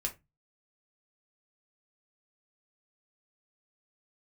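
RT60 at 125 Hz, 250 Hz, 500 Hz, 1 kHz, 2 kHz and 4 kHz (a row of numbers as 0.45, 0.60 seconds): 0.45, 0.35, 0.20, 0.20, 0.20, 0.15 seconds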